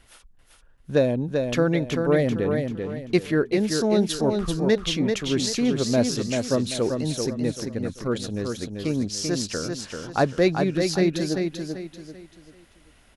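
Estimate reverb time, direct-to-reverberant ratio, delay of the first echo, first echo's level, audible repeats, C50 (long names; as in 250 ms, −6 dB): no reverb audible, no reverb audible, 389 ms, −5.0 dB, 4, no reverb audible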